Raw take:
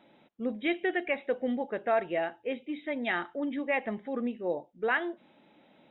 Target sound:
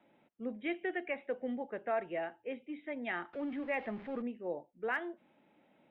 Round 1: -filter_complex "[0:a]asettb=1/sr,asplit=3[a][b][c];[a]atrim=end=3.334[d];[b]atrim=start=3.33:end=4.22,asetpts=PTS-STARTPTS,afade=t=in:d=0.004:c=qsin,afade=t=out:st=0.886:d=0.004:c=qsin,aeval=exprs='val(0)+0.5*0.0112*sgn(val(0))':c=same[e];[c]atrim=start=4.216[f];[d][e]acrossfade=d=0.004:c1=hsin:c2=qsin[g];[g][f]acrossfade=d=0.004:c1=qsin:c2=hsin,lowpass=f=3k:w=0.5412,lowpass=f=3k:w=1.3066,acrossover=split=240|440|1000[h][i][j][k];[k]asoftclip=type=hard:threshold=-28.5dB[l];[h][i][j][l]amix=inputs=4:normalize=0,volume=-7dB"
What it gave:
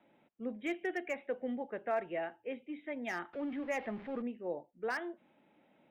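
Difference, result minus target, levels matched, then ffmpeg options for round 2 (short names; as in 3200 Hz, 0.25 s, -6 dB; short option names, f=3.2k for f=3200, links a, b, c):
hard clip: distortion +28 dB
-filter_complex "[0:a]asettb=1/sr,asplit=3[a][b][c];[a]atrim=end=3.334[d];[b]atrim=start=3.33:end=4.22,asetpts=PTS-STARTPTS,afade=t=in:d=0.004:c=qsin,afade=t=out:st=0.886:d=0.004:c=qsin,aeval=exprs='val(0)+0.5*0.0112*sgn(val(0))':c=same[e];[c]atrim=start=4.216[f];[d][e]acrossfade=d=0.004:c1=hsin:c2=qsin[g];[g][f]acrossfade=d=0.004:c1=qsin:c2=hsin,lowpass=f=3k:w=0.5412,lowpass=f=3k:w=1.3066,acrossover=split=240|440|1000[h][i][j][k];[k]asoftclip=type=hard:threshold=-20.5dB[l];[h][i][j][l]amix=inputs=4:normalize=0,volume=-7dB"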